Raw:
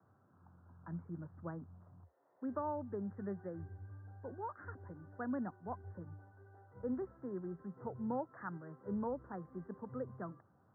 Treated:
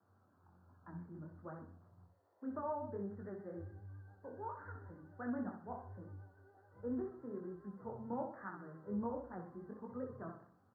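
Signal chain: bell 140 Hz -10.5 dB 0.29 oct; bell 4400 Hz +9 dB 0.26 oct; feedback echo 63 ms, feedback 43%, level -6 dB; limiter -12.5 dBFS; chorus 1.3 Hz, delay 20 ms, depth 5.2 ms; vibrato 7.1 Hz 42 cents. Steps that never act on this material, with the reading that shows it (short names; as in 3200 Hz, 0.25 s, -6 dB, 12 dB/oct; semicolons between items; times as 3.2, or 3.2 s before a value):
bell 4400 Hz: input band ends at 1700 Hz; limiter -12.5 dBFS: input peak -26.0 dBFS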